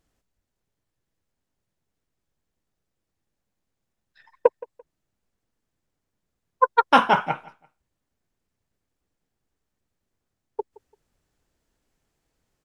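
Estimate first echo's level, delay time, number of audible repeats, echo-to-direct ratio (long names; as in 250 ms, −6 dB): −21.5 dB, 170 ms, 2, −21.0 dB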